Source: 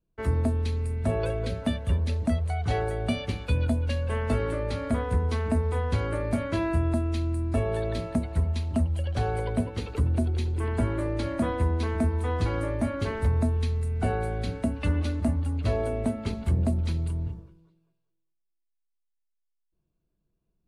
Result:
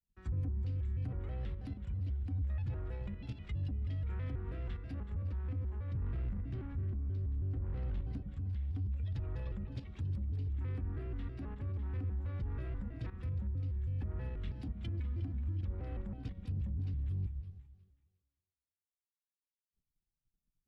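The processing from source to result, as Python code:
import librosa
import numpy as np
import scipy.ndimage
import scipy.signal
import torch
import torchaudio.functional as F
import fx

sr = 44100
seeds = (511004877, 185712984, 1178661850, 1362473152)

y = fx.env_lowpass_down(x, sr, base_hz=910.0, full_db=-21.0)
y = fx.level_steps(y, sr, step_db=15)
y = fx.low_shelf(y, sr, hz=310.0, db=9.5, at=(5.95, 8.18))
y = fx.echo_split(y, sr, split_hz=430.0, low_ms=112, high_ms=183, feedback_pct=52, wet_db=-8.5)
y = 10.0 ** (-25.0 / 20.0) * np.tanh(y / 10.0 ** (-25.0 / 20.0))
y = fx.rider(y, sr, range_db=10, speed_s=2.0)
y = fx.tone_stack(y, sr, knobs='6-0-2')
y = fx.vibrato_shape(y, sr, shape='square', rate_hz=3.1, depth_cents=250.0)
y = y * librosa.db_to_amplitude(8.0)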